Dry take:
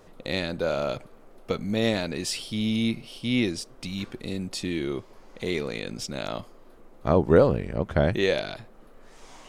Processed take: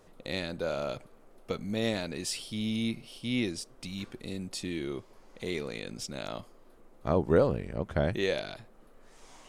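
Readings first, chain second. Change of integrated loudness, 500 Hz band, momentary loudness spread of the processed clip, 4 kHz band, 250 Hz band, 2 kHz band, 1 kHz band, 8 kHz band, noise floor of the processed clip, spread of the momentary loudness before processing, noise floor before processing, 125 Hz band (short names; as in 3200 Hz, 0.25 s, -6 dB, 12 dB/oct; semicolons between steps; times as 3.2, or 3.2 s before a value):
-6.0 dB, -6.0 dB, 12 LU, -5.5 dB, -6.0 dB, -6.0 dB, -6.0 dB, -3.0 dB, -57 dBFS, 12 LU, -52 dBFS, -6.0 dB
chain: bell 9600 Hz +4 dB 1.1 oct; gain -6 dB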